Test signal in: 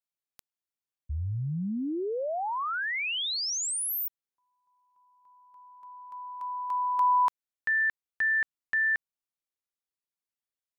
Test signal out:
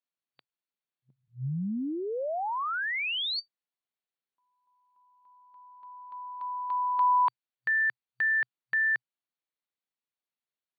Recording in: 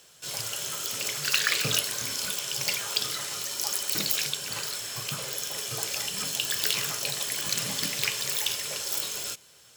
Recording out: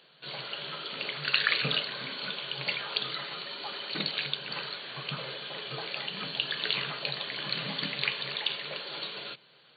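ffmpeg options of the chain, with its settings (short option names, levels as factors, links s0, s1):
-af "afftfilt=real='re*between(b*sr/4096,120,4600)':imag='im*between(b*sr/4096,120,4600)':win_size=4096:overlap=0.75,adynamicequalizer=threshold=0.00398:dfrequency=370:dqfactor=2.3:tfrequency=370:tqfactor=2.3:attack=5:release=100:ratio=0.333:range=1.5:mode=cutabove:tftype=bell"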